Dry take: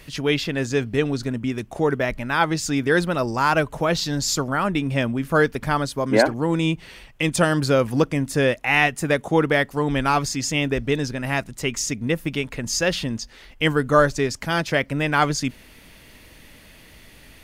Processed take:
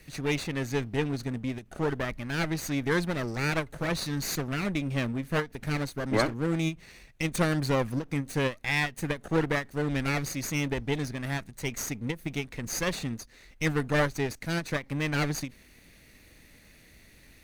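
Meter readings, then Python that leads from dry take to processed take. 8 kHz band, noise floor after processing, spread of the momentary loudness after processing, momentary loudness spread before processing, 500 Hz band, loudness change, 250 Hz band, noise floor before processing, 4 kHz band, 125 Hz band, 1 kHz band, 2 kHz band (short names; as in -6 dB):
-8.0 dB, -56 dBFS, 7 LU, 7 LU, -10.0 dB, -8.5 dB, -7.0 dB, -48 dBFS, -9.0 dB, -5.0 dB, -12.0 dB, -8.5 dB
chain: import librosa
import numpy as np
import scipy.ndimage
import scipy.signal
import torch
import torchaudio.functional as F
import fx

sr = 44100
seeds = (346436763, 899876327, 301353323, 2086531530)

y = fx.lower_of_two(x, sr, delay_ms=0.48)
y = fx.end_taper(y, sr, db_per_s=270.0)
y = y * librosa.db_to_amplitude(-7.0)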